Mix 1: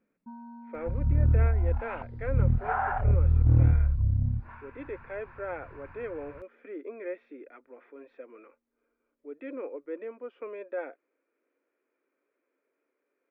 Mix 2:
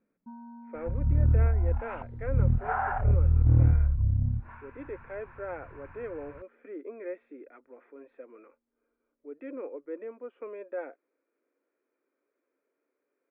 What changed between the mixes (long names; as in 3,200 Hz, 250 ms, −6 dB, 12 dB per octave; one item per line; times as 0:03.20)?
second sound: add high-shelf EQ 2,300 Hz +7.5 dB
master: add high-frequency loss of the air 410 metres